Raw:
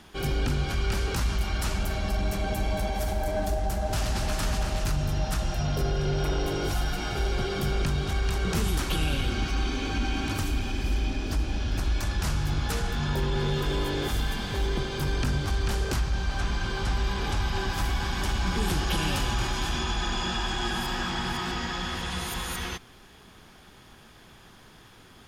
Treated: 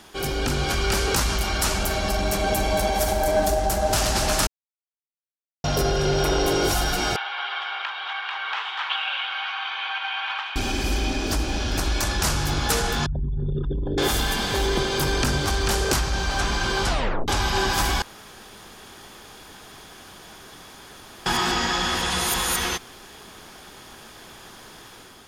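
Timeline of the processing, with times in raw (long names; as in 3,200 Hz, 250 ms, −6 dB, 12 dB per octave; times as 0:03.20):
0:04.47–0:05.64: silence
0:07.16–0:10.56: elliptic band-pass filter 860–3,300 Hz, stop band 70 dB
0:13.06–0:13.98: spectral envelope exaggerated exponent 3
0:16.87: tape stop 0.41 s
0:18.02–0:21.26: fill with room tone
whole clip: bass and treble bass −9 dB, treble +11 dB; automatic gain control gain up to 4.5 dB; high-shelf EQ 3,000 Hz −8.5 dB; level +5.5 dB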